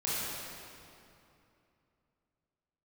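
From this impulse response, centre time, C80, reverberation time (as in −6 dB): 185 ms, −2.5 dB, 2.8 s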